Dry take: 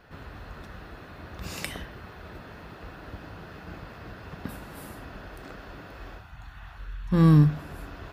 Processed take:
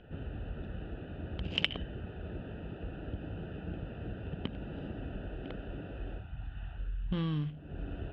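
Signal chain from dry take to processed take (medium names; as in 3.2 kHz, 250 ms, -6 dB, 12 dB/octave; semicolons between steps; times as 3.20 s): local Wiener filter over 41 samples; compression 6:1, threshold -37 dBFS, peak gain reduction 21.5 dB; resonant low-pass 3.1 kHz, resonance Q 11; trim +4 dB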